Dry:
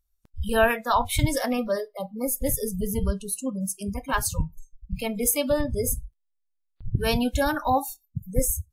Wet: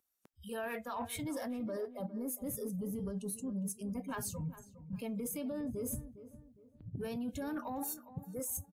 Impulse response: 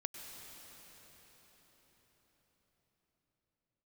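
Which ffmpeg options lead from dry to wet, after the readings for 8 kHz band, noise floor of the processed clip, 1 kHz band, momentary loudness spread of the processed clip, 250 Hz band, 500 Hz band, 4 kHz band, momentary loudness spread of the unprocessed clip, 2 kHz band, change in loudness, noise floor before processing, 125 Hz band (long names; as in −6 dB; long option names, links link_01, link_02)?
−13.5 dB, −67 dBFS, −18.0 dB, 8 LU, −9.5 dB, −15.0 dB, −19.0 dB, 10 LU, −18.5 dB, −13.5 dB, −75 dBFS, −14.0 dB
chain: -filter_complex "[0:a]highpass=260,equalizer=frequency=4100:width_type=o:width=0.99:gain=-3.5,acrossover=split=340[link_01][link_02];[link_01]dynaudnorm=framelen=400:gausssize=5:maxgain=15.5dB[link_03];[link_03][link_02]amix=inputs=2:normalize=0,alimiter=limit=-18dB:level=0:latency=1:release=22,areverse,acompressor=threshold=-38dB:ratio=8,areverse,asoftclip=type=tanh:threshold=-30.5dB,asplit=2[link_04][link_05];[link_05]adelay=408,lowpass=frequency=1600:poles=1,volume=-14dB,asplit=2[link_06][link_07];[link_07]adelay=408,lowpass=frequency=1600:poles=1,volume=0.37,asplit=2[link_08][link_09];[link_09]adelay=408,lowpass=frequency=1600:poles=1,volume=0.37,asplit=2[link_10][link_11];[link_11]adelay=408,lowpass=frequency=1600:poles=1,volume=0.37[link_12];[link_04][link_06][link_08][link_10][link_12]amix=inputs=5:normalize=0,volume=1.5dB"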